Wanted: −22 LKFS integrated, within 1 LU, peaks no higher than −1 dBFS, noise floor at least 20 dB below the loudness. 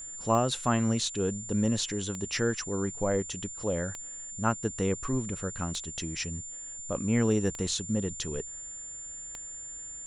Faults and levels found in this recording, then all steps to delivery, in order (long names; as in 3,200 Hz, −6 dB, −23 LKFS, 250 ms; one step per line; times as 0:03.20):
number of clicks 6; interfering tone 7,200 Hz; level of the tone −39 dBFS; integrated loudness −31.0 LKFS; sample peak −13.0 dBFS; target loudness −22.0 LKFS
→ click removal
notch filter 7,200 Hz, Q 30
level +9 dB